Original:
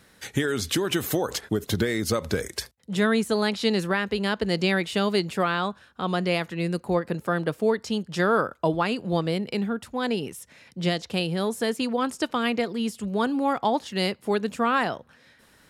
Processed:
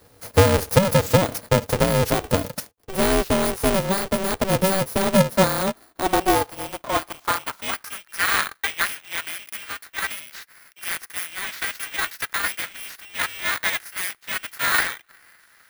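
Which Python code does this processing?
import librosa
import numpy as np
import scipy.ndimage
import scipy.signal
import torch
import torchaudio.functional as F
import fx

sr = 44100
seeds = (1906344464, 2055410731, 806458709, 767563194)

y = fx.bit_reversed(x, sr, seeds[0], block=16)
y = fx.filter_sweep_highpass(y, sr, from_hz=290.0, to_hz=1700.0, start_s=4.98, end_s=8.25, q=6.3)
y = y * np.sign(np.sin(2.0 * np.pi * 190.0 * np.arange(len(y)) / sr))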